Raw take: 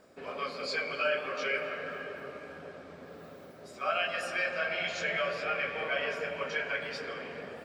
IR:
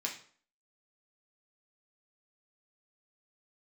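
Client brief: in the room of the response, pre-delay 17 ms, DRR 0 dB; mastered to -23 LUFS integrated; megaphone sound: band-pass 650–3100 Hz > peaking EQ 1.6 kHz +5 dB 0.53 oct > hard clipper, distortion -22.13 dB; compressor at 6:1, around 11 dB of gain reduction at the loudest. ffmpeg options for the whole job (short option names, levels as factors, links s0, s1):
-filter_complex "[0:a]acompressor=threshold=0.0126:ratio=6,asplit=2[s0][s1];[1:a]atrim=start_sample=2205,adelay=17[s2];[s1][s2]afir=irnorm=-1:irlink=0,volume=0.75[s3];[s0][s3]amix=inputs=2:normalize=0,highpass=650,lowpass=3100,equalizer=f=1600:t=o:w=0.53:g=5,asoftclip=type=hard:threshold=0.0316,volume=5.31"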